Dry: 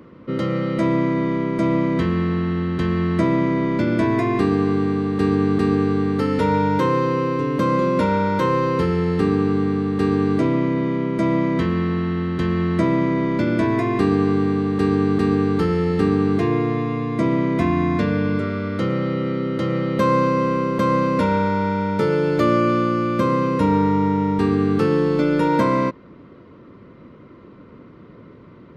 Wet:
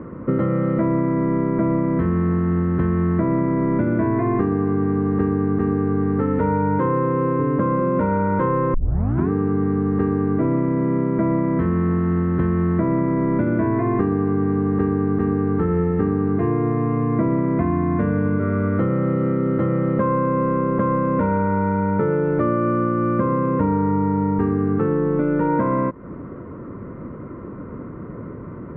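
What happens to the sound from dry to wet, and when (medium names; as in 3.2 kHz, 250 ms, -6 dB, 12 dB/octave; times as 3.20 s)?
8.74 s: tape start 0.56 s
whole clip: low-pass 1.7 kHz 24 dB/octave; bass shelf 110 Hz +6 dB; compression, threshold -26 dBFS; trim +9 dB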